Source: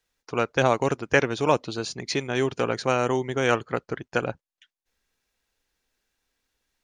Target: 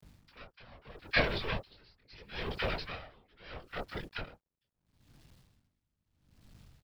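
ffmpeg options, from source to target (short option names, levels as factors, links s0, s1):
-filter_complex "[0:a]acrossover=split=350|2600[s0][s1][s2];[s0]alimiter=level_in=2.11:limit=0.0631:level=0:latency=1,volume=0.473[s3];[s3][s1][s2]amix=inputs=3:normalize=0,tiltshelf=f=1200:g=-5.5,aresample=11025,aeval=exprs='max(val(0),0)':c=same,aresample=44100,aeval=exprs='val(0)+0.000631*(sin(2*PI*50*n/s)+sin(2*PI*2*50*n/s)/2+sin(2*PI*3*50*n/s)/3+sin(2*PI*4*50*n/s)/4+sin(2*PI*5*50*n/s)/5)':c=same,flanger=delay=19.5:depth=6.6:speed=0.33,acompressor=mode=upward:threshold=0.00282:ratio=2.5,acrossover=split=1100[s4][s5];[s4]adelay=30[s6];[s6][s5]amix=inputs=2:normalize=0,afftfilt=real='hypot(re,im)*cos(2*PI*random(0))':imag='hypot(re,im)*sin(2*PI*random(1))':win_size=512:overlap=0.75,acrusher=bits=11:mix=0:aa=0.000001,aeval=exprs='val(0)*pow(10,-28*(0.5-0.5*cos(2*PI*0.76*n/s))/20)':c=same,volume=2.82"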